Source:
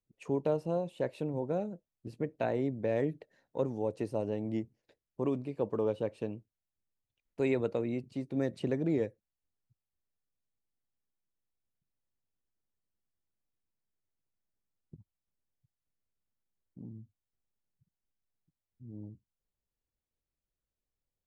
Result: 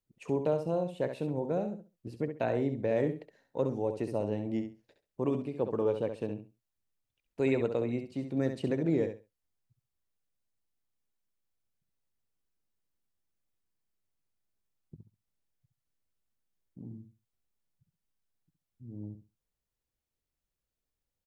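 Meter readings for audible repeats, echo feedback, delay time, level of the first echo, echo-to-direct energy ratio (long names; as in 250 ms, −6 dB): 2, 20%, 67 ms, −8.0 dB, −8.0 dB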